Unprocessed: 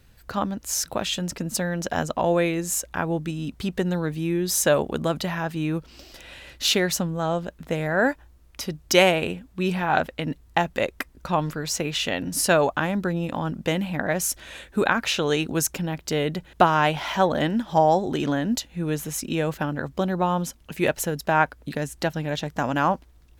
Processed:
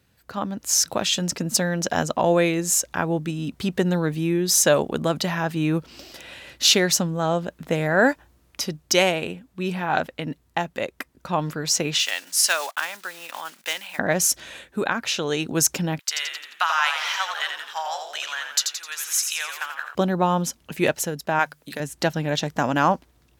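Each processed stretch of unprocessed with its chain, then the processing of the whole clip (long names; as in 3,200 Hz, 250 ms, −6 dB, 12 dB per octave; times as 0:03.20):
0:11.99–0:13.99: one scale factor per block 5 bits + high-pass filter 1,300 Hz
0:15.99–0:19.95: high-pass filter 1,200 Hz 24 dB per octave + echo with shifted repeats 86 ms, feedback 52%, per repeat −57 Hz, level −6 dB
0:21.39–0:21.80: spectral tilt +2.5 dB per octave + mains-hum notches 50/100/150 Hz
whole clip: high-pass filter 100 Hz 12 dB per octave; automatic gain control gain up to 9.5 dB; dynamic equaliser 5,700 Hz, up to +6 dB, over −34 dBFS, Q 1.2; level −5 dB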